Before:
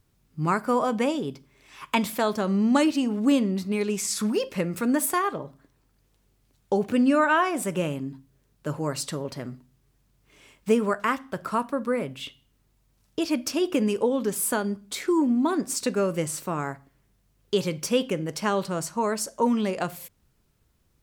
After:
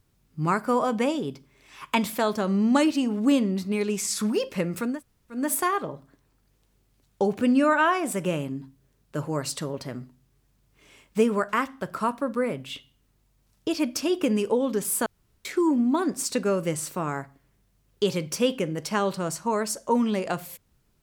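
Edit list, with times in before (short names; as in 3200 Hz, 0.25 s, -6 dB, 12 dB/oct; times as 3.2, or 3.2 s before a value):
4.91 insert room tone 0.49 s, crossfade 0.24 s
14.57–14.96 room tone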